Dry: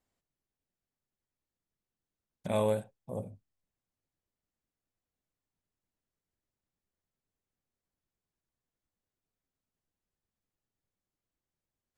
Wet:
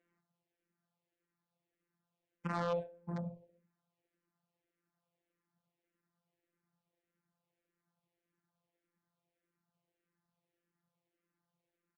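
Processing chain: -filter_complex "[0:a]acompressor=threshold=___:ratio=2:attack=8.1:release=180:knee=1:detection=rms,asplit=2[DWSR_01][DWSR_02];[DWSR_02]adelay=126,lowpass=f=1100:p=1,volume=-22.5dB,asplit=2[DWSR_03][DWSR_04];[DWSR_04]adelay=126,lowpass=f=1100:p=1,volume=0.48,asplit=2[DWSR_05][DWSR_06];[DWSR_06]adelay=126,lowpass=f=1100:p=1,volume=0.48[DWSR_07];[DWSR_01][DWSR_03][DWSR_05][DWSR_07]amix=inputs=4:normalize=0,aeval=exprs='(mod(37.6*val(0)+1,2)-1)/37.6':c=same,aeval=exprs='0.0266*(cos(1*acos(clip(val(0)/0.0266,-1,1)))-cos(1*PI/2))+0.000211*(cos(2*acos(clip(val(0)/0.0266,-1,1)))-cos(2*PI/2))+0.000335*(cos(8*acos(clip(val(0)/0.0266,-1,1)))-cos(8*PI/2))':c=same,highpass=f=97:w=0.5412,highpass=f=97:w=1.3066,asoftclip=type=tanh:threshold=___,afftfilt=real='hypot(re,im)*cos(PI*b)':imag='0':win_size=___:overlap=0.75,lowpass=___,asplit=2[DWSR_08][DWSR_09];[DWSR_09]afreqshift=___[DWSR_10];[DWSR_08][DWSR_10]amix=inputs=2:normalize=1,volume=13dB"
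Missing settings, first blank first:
-43dB, -33dB, 1024, 2300, -1.7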